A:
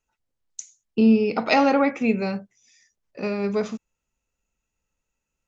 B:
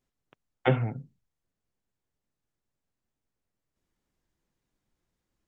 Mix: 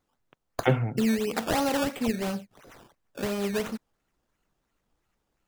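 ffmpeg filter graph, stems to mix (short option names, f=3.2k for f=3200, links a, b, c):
-filter_complex "[0:a]equalizer=f=5.5k:t=o:w=0.64:g=13,acompressor=threshold=-26dB:ratio=2,acrusher=samples=15:mix=1:aa=0.000001:lfo=1:lforange=15:lforate=2.9,volume=-1.5dB[a];[1:a]volume=1dB[b];[a][b]amix=inputs=2:normalize=0"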